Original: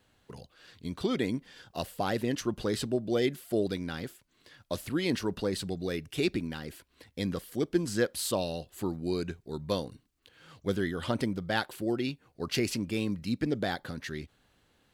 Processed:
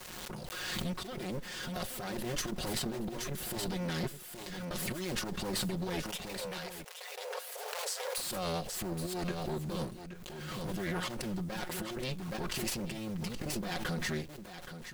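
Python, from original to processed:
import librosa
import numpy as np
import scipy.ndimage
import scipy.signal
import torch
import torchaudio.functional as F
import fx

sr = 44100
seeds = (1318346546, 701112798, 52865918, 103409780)

y = fx.lower_of_two(x, sr, delay_ms=5.5)
y = fx.over_compress(y, sr, threshold_db=-38.0, ratio=-0.5)
y = fx.quant_dither(y, sr, seeds[0], bits=10, dither='none')
y = fx.brickwall_highpass(y, sr, low_hz=410.0, at=(6.02, 8.18))
y = y + 10.0 ** (-11.0 / 20.0) * np.pad(y, (int(823 * sr / 1000.0), 0))[:len(y)]
y = fx.pre_swell(y, sr, db_per_s=23.0)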